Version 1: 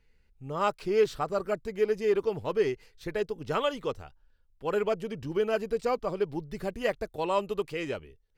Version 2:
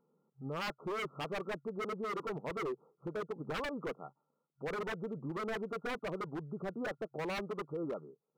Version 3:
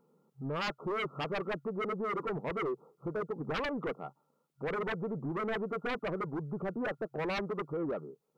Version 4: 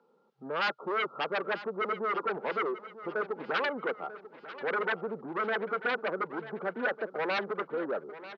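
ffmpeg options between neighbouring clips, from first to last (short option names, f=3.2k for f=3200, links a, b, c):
-af "afftfilt=real='re*between(b*sr/4096,130,1400)':imag='im*between(b*sr/4096,130,1400)':win_size=4096:overlap=0.75,aeval=exprs='0.0422*(abs(mod(val(0)/0.0422+3,4)-2)-1)':c=same,alimiter=level_in=11.5dB:limit=-24dB:level=0:latency=1:release=229,volume=-11.5dB,volume=3.5dB"
-af "asoftclip=type=tanh:threshold=-36dB,volume=6.5dB"
-filter_complex "[0:a]acrossover=split=350|1700[a][b][c];[c]crystalizer=i=2:c=0[d];[a][b][d]amix=inputs=3:normalize=0,highpass=f=230:w=0.5412,highpass=f=230:w=1.3066,equalizer=f=290:t=q:w=4:g=-6,equalizer=f=530:t=q:w=4:g=3,equalizer=f=850:t=q:w=4:g=4,equalizer=f=1.5k:t=q:w=4:g=9,lowpass=f=4.3k:w=0.5412,lowpass=f=4.3k:w=1.3066,aecho=1:1:941|1882|2823|3764:0.178|0.0836|0.0393|0.0185,volume=1.5dB"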